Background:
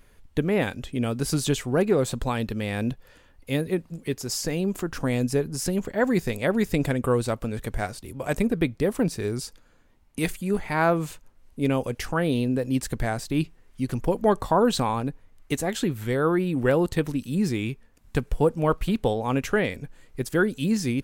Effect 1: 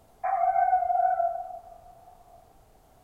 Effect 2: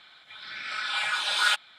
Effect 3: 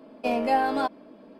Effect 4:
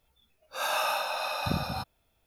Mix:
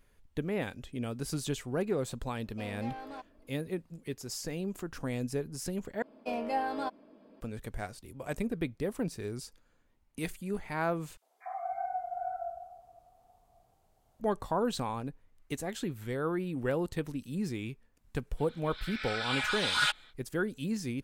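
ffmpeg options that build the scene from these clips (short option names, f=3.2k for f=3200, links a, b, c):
-filter_complex "[3:a]asplit=2[a][b];[0:a]volume=-10dB[c];[a]asoftclip=type=tanh:threshold=-22dB[d];[1:a]acrossover=split=380|1500[e][f][g];[f]adelay=50[h];[e]adelay=540[i];[i][h][g]amix=inputs=3:normalize=0[j];[c]asplit=3[k][l][m];[k]atrim=end=6.024[n];[b]atrim=end=1.39,asetpts=PTS-STARTPTS,volume=-9dB[o];[l]atrim=start=7.406:end=11.174[p];[j]atrim=end=3.03,asetpts=PTS-STARTPTS,volume=-11dB[q];[m]atrim=start=14.196[r];[d]atrim=end=1.39,asetpts=PTS-STARTPTS,volume=-16dB,afade=t=in:d=0.004:c=hsin,afade=t=out:st=1.386:d=0.004:c=hsin,adelay=2340[s];[2:a]atrim=end=1.78,asetpts=PTS-STARTPTS,volume=-4.5dB,afade=t=in:d=0.05,afade=t=out:st=1.73:d=0.05,adelay=18360[t];[n][o]acrossfade=d=0.004:c1=hsin:c2=hsin[u];[u][p]acrossfade=d=0.004:c1=hsin:c2=hsin[v];[v][q]acrossfade=d=0.004:c1=hsin:c2=hsin[w];[w][r]acrossfade=d=0.004:c1=hsin:c2=hsin[x];[x][s][t]amix=inputs=3:normalize=0"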